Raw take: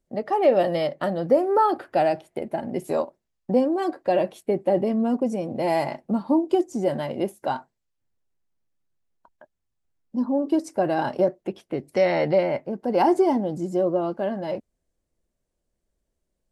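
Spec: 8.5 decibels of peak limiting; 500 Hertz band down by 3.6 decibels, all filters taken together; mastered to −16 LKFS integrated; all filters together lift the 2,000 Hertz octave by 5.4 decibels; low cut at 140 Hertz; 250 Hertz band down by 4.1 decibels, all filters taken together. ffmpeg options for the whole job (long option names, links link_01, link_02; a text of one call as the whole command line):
ffmpeg -i in.wav -af "highpass=140,equalizer=frequency=250:width_type=o:gain=-3.5,equalizer=frequency=500:width_type=o:gain=-4,equalizer=frequency=2000:width_type=o:gain=6.5,volume=13.5dB,alimiter=limit=-4.5dB:level=0:latency=1" out.wav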